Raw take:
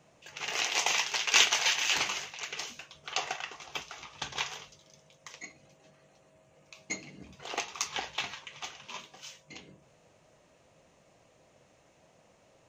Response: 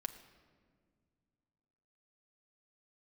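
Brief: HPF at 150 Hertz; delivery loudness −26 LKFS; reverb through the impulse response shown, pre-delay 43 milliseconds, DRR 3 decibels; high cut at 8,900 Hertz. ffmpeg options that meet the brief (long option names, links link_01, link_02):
-filter_complex "[0:a]highpass=150,lowpass=8900,asplit=2[link_01][link_02];[1:a]atrim=start_sample=2205,adelay=43[link_03];[link_02][link_03]afir=irnorm=-1:irlink=0,volume=-1.5dB[link_04];[link_01][link_04]amix=inputs=2:normalize=0,volume=3dB"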